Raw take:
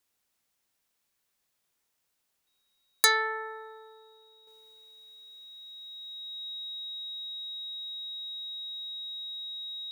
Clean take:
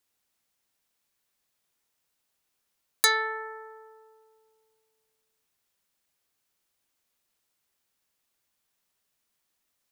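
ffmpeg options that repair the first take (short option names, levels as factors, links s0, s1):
-af "bandreject=f=3800:w=30,asetnsamples=n=441:p=0,asendcmd='4.47 volume volume -7.5dB',volume=1"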